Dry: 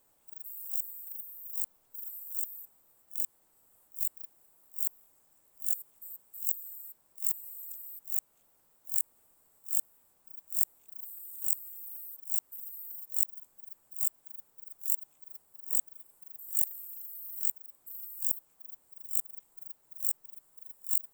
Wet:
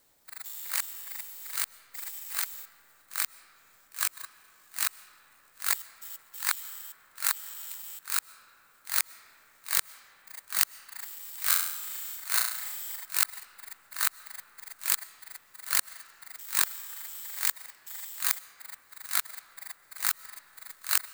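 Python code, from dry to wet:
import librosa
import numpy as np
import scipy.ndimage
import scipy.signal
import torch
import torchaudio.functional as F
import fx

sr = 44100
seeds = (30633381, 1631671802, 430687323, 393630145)

y = fx.bit_reversed(x, sr, seeds[0], block=16)
y = fx.room_flutter(y, sr, wall_m=5.8, rt60_s=0.7, at=(11.42, 12.96))
y = fx.rev_freeverb(y, sr, rt60_s=4.3, hf_ratio=0.35, predelay_ms=85, drr_db=16.5)
y = F.gain(torch.from_numpy(y), 2.5).numpy()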